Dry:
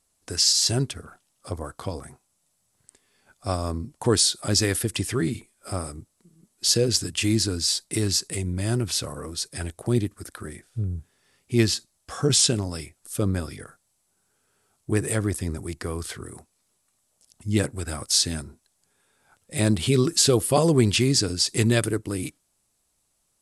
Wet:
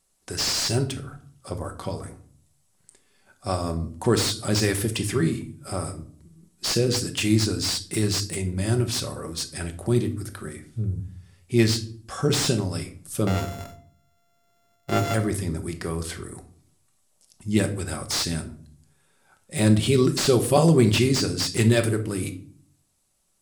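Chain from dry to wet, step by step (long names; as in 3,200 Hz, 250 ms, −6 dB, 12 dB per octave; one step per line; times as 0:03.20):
0:13.27–0:15.14: samples sorted by size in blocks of 64 samples
rectangular room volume 570 cubic metres, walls furnished, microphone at 1.1 metres
slew-rate limiting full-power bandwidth 360 Hz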